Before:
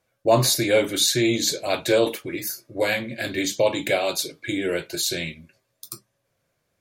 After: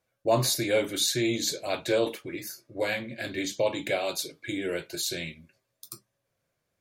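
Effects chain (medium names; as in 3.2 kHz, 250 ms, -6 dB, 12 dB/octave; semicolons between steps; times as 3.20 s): 1.70–3.99 s: treble shelf 9.4 kHz -7 dB; trim -6 dB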